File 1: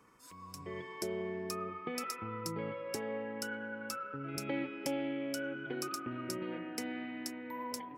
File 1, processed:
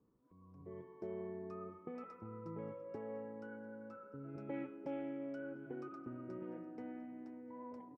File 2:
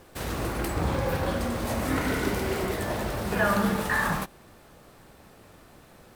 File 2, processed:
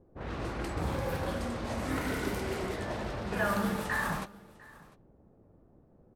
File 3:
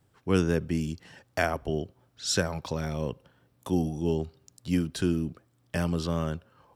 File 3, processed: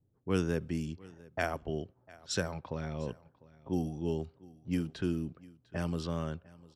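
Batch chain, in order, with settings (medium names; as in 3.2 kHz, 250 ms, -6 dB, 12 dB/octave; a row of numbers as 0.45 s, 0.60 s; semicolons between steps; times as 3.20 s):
level-controlled noise filter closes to 400 Hz, open at -23 dBFS; delay 700 ms -22 dB; trim -6 dB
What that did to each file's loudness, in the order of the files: -8.0 LU, -6.0 LU, -6.0 LU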